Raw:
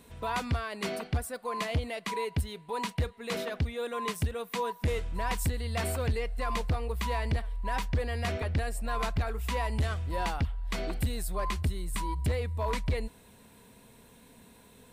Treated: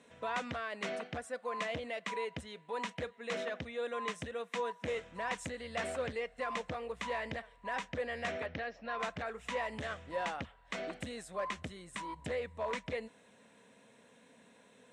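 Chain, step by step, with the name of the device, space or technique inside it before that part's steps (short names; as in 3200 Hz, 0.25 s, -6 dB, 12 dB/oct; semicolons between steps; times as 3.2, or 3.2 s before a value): 8.46–9 elliptic low-pass 5600 Hz, stop band 40 dB; full-range speaker at full volume (Doppler distortion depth 0.19 ms; speaker cabinet 230–7700 Hz, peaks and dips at 370 Hz -6 dB, 550 Hz +5 dB, 930 Hz -3 dB, 1800 Hz +4 dB, 4600 Hz -9 dB); gain -3.5 dB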